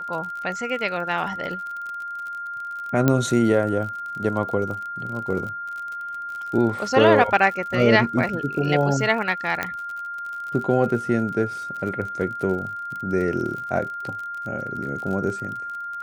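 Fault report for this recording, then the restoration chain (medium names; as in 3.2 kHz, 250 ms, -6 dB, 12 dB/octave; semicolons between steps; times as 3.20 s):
crackle 46 per s -31 dBFS
whine 1.4 kHz -29 dBFS
3.08 s: pop -6 dBFS
9.63 s: pop -10 dBFS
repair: de-click; band-stop 1.4 kHz, Q 30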